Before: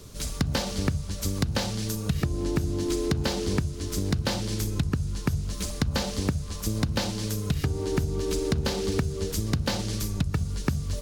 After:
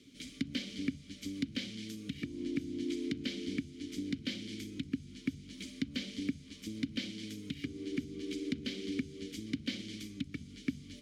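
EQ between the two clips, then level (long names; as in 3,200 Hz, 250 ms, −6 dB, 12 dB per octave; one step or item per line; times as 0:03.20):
formant filter i
high-shelf EQ 3,300 Hz +9 dB
+1.5 dB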